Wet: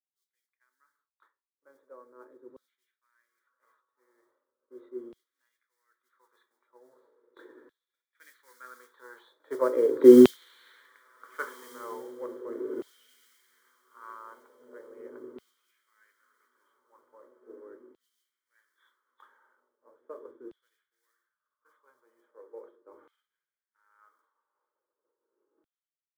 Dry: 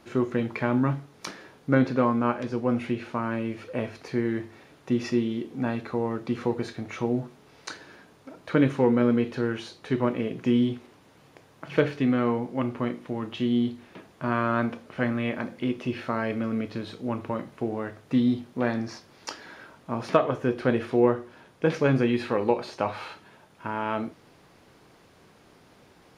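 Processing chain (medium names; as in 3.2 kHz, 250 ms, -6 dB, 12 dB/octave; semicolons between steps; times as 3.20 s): knee-point frequency compression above 3.1 kHz 4:1; Doppler pass-by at 10.29 s, 14 m/s, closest 2.3 m; level-controlled noise filter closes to 2.2 kHz, open at -43 dBFS; modulation noise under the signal 21 dB; tilt EQ -2 dB/octave; reverse; upward compressor, threshold -45 dBFS; reverse; high-pass 110 Hz 6 dB/octave; echo that smears into a reverb 1553 ms, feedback 54%, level -10 dB; expander -57 dBFS; static phaser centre 720 Hz, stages 6; LFO high-pass saw down 0.39 Hz 300–3500 Hz; three bands expanded up and down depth 70%; trim +4.5 dB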